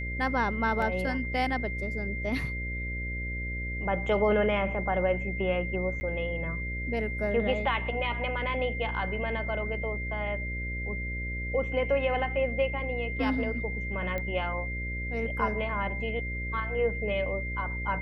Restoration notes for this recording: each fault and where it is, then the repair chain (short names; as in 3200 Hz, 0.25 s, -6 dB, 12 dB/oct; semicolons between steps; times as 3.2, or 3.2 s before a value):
buzz 60 Hz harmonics 10 -35 dBFS
tone 2100 Hz -35 dBFS
0.82 gap 2.1 ms
6–6.01 gap 10 ms
14.18 pop -20 dBFS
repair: de-click; de-hum 60 Hz, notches 10; notch 2100 Hz, Q 30; interpolate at 0.82, 2.1 ms; interpolate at 6, 10 ms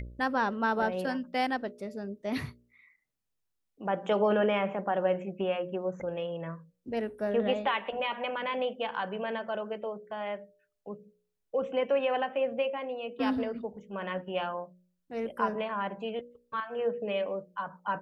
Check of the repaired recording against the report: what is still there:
none